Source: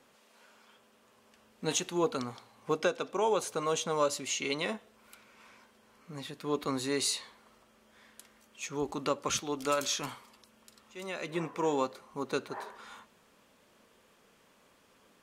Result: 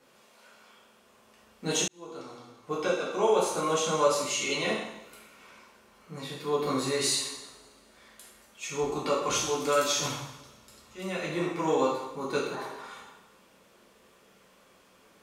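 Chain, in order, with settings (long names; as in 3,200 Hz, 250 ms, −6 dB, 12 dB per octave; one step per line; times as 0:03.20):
0:10.00–0:11.35: parametric band 93 Hz +11 dB 1.4 octaves
coupled-rooms reverb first 0.83 s, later 2.7 s, from −25 dB, DRR −6 dB
0:01.88–0:03.30: fade in
level −2.5 dB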